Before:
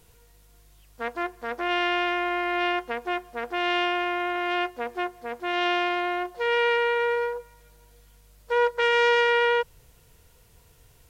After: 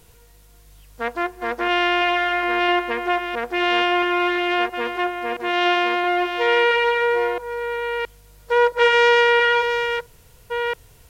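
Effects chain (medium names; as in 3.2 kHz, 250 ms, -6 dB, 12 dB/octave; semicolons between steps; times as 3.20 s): chunks repeated in reverse 671 ms, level -7 dB; trim +5.5 dB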